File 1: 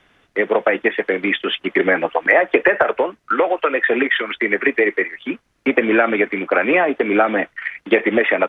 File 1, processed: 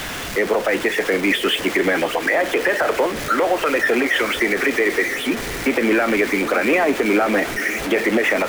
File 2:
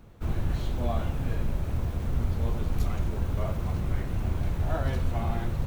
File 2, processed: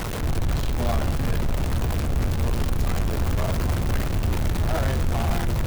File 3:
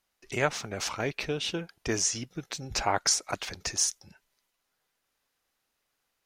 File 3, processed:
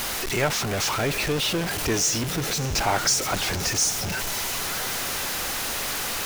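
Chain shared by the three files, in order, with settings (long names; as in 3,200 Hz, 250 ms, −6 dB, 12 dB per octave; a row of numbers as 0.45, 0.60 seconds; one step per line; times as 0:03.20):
converter with a step at zero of −22.5 dBFS
brickwall limiter −9.5 dBFS
feedback delay with all-pass diffusion 578 ms, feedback 73%, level −15 dB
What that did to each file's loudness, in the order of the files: −1.0, +5.0, +6.0 LU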